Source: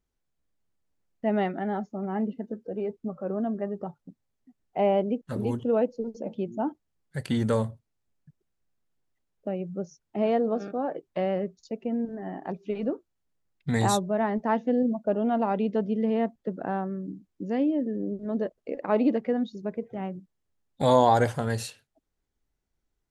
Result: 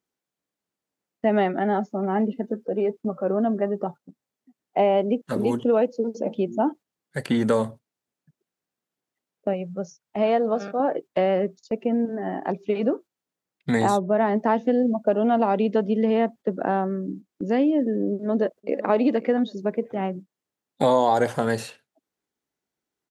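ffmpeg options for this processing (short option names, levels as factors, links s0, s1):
-filter_complex "[0:a]asettb=1/sr,asplit=3[s0][s1][s2];[s0]atrim=end=9.534[s3];[s1]atrim=start=9.53:end=10.8,asetpts=PTS-STARTPTS,afade=t=in:d=0.004:c=qsin,afade=t=out:st=1.266:d=0.004:c=qsin,equalizer=f=320:t=o:w=0.77:g=-12[s4];[s2]atrim=start=10.796[s5];[s3][s4]acrossfade=d=0.004:c1=hsin:c2=qsin[s6];[s6][s5]acrossfade=d=0.004:c1=qsin:c2=hsin,asplit=2[s7][s8];[s8]afade=t=in:st=18.1:d=0.01,afade=t=out:st=18.86:d=0.01,aecho=0:1:530|1060:0.16788|0.0335761[s9];[s7][s9]amix=inputs=2:normalize=0,highpass=210,agate=range=0.447:threshold=0.00562:ratio=16:detection=peak,acrossover=split=940|2400[s10][s11][s12];[s10]acompressor=threshold=0.0501:ratio=4[s13];[s11]acompressor=threshold=0.0112:ratio=4[s14];[s12]acompressor=threshold=0.00355:ratio=4[s15];[s13][s14][s15]amix=inputs=3:normalize=0,volume=2.66"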